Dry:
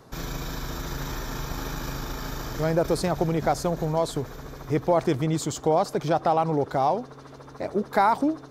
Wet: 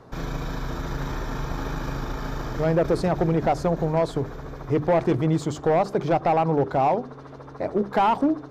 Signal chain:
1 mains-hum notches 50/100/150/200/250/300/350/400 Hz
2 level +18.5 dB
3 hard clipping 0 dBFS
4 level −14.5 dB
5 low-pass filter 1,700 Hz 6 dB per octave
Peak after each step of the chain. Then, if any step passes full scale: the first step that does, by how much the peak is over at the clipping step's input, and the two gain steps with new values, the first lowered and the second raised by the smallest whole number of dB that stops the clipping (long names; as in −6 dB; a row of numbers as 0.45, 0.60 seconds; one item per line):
−9.0, +9.5, 0.0, −14.5, −14.5 dBFS
step 2, 9.5 dB
step 2 +8.5 dB, step 4 −4.5 dB